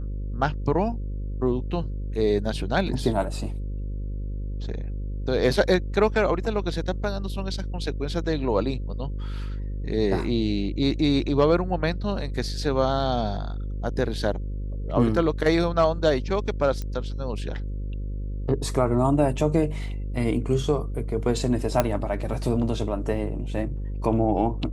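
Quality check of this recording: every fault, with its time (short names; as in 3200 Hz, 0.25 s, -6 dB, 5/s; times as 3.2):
buzz 50 Hz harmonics 11 -30 dBFS
16.82 pop -19 dBFS
21.8 pop -6 dBFS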